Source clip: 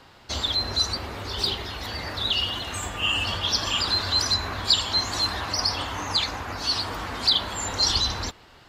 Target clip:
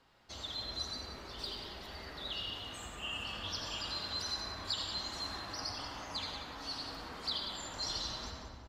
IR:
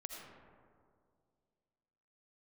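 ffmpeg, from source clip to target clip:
-filter_complex "[0:a]aecho=1:1:185|370|555:0.335|0.104|0.0322[link_01];[1:a]atrim=start_sample=2205[link_02];[link_01][link_02]afir=irnorm=-1:irlink=0,flanger=delay=4.3:depth=2.7:regen=-68:speed=0.96:shape=triangular,volume=-7.5dB"

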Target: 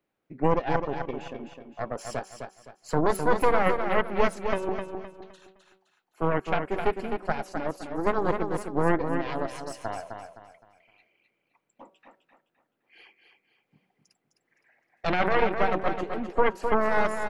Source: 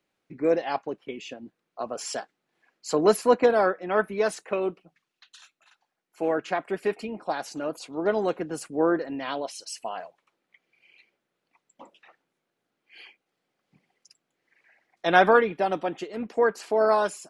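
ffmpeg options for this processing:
ffmpeg -i in.wav -filter_complex "[0:a]equalizer=frequency=5500:width=0.44:gain=-10,bandreject=frequency=189.8:width_type=h:width=4,bandreject=frequency=379.6:width_type=h:width=4,bandreject=frequency=569.4:width_type=h:width=4,bandreject=frequency=759.2:width_type=h:width=4,bandreject=frequency=949:width_type=h:width=4,bandreject=frequency=1138.8:width_type=h:width=4,bandreject=frequency=1328.6:width_type=h:width=4,alimiter=limit=-17dB:level=0:latency=1:release=15,aeval=exprs='0.75*(cos(1*acos(clip(val(0)/0.75,-1,1)))-cos(1*PI/2))+0.376*(cos(6*acos(clip(val(0)/0.75,-1,1)))-cos(6*PI/2))':channel_layout=same,asplit=2[link_01][link_02];[link_02]aecho=0:1:258|516|774|1032:0.473|0.161|0.0547|0.0186[link_03];[link_01][link_03]amix=inputs=2:normalize=0" out.wav

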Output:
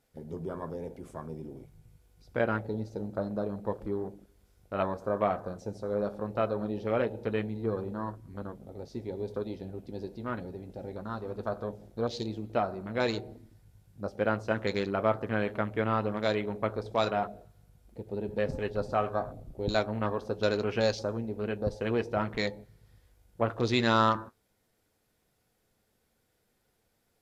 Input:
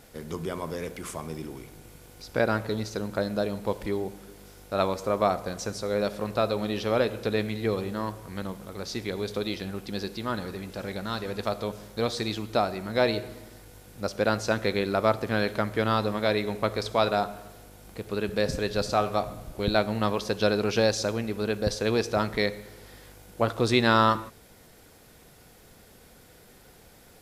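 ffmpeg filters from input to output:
ffmpeg -i in.wav -af "afwtdn=0.0178,flanger=delay=7.5:depth=1.9:regen=-59:speed=0.1:shape=sinusoidal" out.wav

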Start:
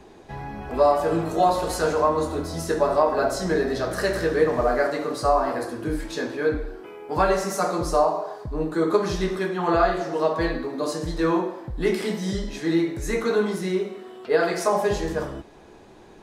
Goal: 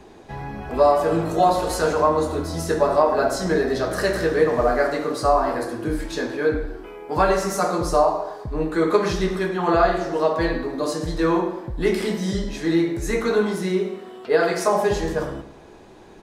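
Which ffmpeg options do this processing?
ffmpeg -i in.wav -filter_complex "[0:a]asettb=1/sr,asplit=3[link_01][link_02][link_03];[link_01]atrim=end=8.484[link_04];[link_02]atrim=start=8.48:end=9.13,asetpts=PTS-STARTPTS,afade=type=in:duration=0.004:curve=qsin,afade=type=out:start_time=0.646:duration=0.004:curve=qsin,equalizer=frequency=2200:width_type=o:width=0.94:gain=6.5[link_05];[link_03]atrim=start=9.126[link_06];[link_04][link_05]acrossfade=duration=0.004:curve1=hsin:curve2=qsin[link_07];[link_07][link_06]acrossfade=duration=0.004:curve1=qsin:curve2=hsin,asplit=2[link_08][link_09];[link_09]adelay=109,lowpass=frequency=2000:poles=1,volume=-12.5dB,asplit=2[link_10][link_11];[link_11]adelay=109,lowpass=frequency=2000:poles=1,volume=0.38,asplit=2[link_12][link_13];[link_13]adelay=109,lowpass=frequency=2000:poles=1,volume=0.38,asplit=2[link_14][link_15];[link_15]adelay=109,lowpass=frequency=2000:poles=1,volume=0.38[link_16];[link_08][link_10][link_12][link_14][link_16]amix=inputs=5:normalize=0,volume=2dB" out.wav

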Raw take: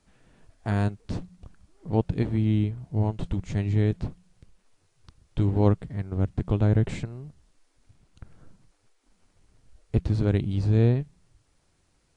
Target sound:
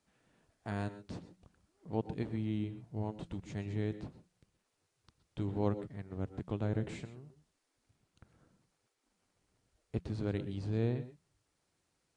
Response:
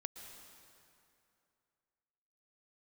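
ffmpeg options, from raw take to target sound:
-filter_complex "[0:a]highpass=frequency=170:poles=1[link_01];[1:a]atrim=start_sample=2205,atrim=end_sample=6174[link_02];[link_01][link_02]afir=irnorm=-1:irlink=0,volume=-5dB"

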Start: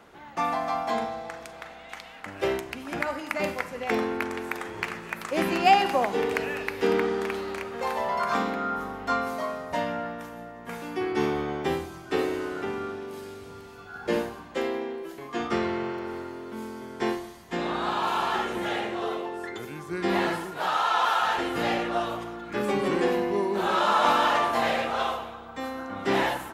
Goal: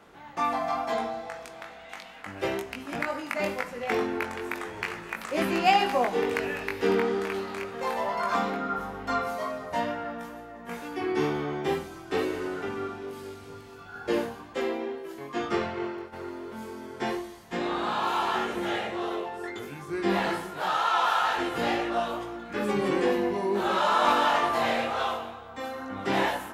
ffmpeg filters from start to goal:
ffmpeg -i in.wav -filter_complex "[0:a]flanger=delay=19.5:depth=2:speed=2.2,asplit=3[link_01][link_02][link_03];[link_01]afade=type=out:start_time=15.58:duration=0.02[link_04];[link_02]agate=range=-33dB:threshold=-30dB:ratio=3:detection=peak,afade=type=in:start_time=15.58:duration=0.02,afade=type=out:start_time=16.12:duration=0.02[link_05];[link_03]afade=type=in:start_time=16.12:duration=0.02[link_06];[link_04][link_05][link_06]amix=inputs=3:normalize=0,volume=2dB" out.wav

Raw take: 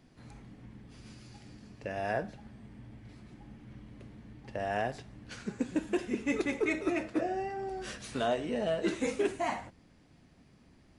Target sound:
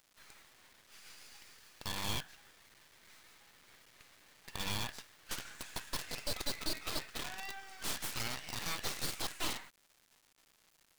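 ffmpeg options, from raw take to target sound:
ffmpeg -i in.wav -af "highpass=frequency=1200:width=0.5412,highpass=frequency=1200:width=1.3066,alimiter=level_in=8dB:limit=-24dB:level=0:latency=1:release=300,volume=-8dB,aphaser=in_gain=1:out_gain=1:delay=3.9:decay=0.23:speed=1.1:type=triangular,acrusher=bits=8:dc=4:mix=0:aa=0.000001,aeval=exprs='abs(val(0))':channel_layout=same,volume=7.5dB" out.wav

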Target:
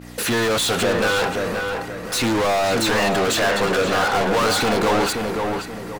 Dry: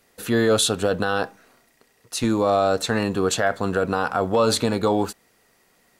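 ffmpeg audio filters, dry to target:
ffmpeg -i in.wav -filter_complex "[0:a]agate=range=-33dB:threshold=-56dB:ratio=3:detection=peak,aphaser=in_gain=1:out_gain=1:delay=2.2:decay=0.31:speed=0.41:type=triangular,aeval=exprs='val(0)+0.00501*(sin(2*PI*60*n/s)+sin(2*PI*2*60*n/s)/2+sin(2*PI*3*60*n/s)/3+sin(2*PI*4*60*n/s)/4+sin(2*PI*5*60*n/s)/5)':channel_layout=same,asplit=2[link_01][link_02];[link_02]highpass=frequency=720:poles=1,volume=37dB,asoftclip=type=tanh:threshold=-7.5dB[link_03];[link_01][link_03]amix=inputs=2:normalize=0,lowpass=frequency=6500:poles=1,volume=-6dB,asplit=2[link_04][link_05];[link_05]adelay=527,lowpass=frequency=2500:poles=1,volume=-4dB,asplit=2[link_06][link_07];[link_07]adelay=527,lowpass=frequency=2500:poles=1,volume=0.38,asplit=2[link_08][link_09];[link_09]adelay=527,lowpass=frequency=2500:poles=1,volume=0.38,asplit=2[link_10][link_11];[link_11]adelay=527,lowpass=frequency=2500:poles=1,volume=0.38,asplit=2[link_12][link_13];[link_13]adelay=527,lowpass=frequency=2500:poles=1,volume=0.38[link_14];[link_06][link_08][link_10][link_12][link_14]amix=inputs=5:normalize=0[link_15];[link_04][link_15]amix=inputs=2:normalize=0,volume=-6.5dB" out.wav

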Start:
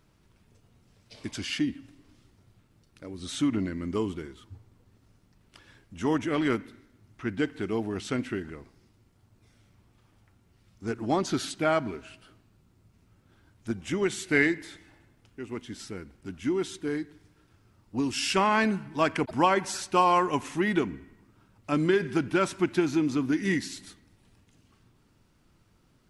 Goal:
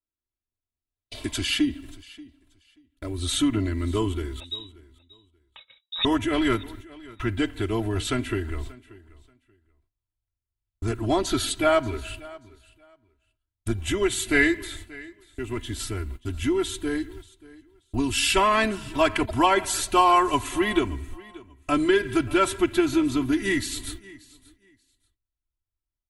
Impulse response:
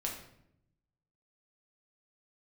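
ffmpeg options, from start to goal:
-filter_complex "[0:a]agate=range=-45dB:threshold=-52dB:ratio=16:detection=peak,aecho=1:1:3:0.99,asettb=1/sr,asplit=3[link_01][link_02][link_03];[link_01]atrim=end=4.404[link_04];[link_02]atrim=start=4.4:end=6.05,asetpts=PTS-STARTPTS,afade=type=in:duration=0.004:curve=qsin,afade=type=out:start_time=1.646:duration=0.004:curve=qsin,lowpass=frequency=3300:width_type=q:width=0.5098,lowpass=frequency=3300:width_type=q:width=0.6013,lowpass=frequency=3300:width_type=q:width=0.9,lowpass=frequency=3300:width_type=q:width=2.563,afreqshift=-3900[link_05];[link_03]atrim=start=6.046[link_06];[link_04][link_05]acrossfade=duration=0.004:curve1=hsin:curve2=qsin[link_07];[link_07][link_06]acrossfade=duration=0.004:curve1=qsin:curve2=hsin,asplit=2[link_08][link_09];[link_09]acompressor=threshold=-37dB:ratio=6,volume=2dB[link_10];[link_08][link_10]amix=inputs=2:normalize=0,aexciter=amount=1.3:drive=4.4:freq=3000,asplit=2[link_11][link_12];[link_12]aecho=0:1:583|1166:0.0891|0.0169[link_13];[link_11][link_13]amix=inputs=2:normalize=0,asubboost=boost=6.5:cutoff=90"

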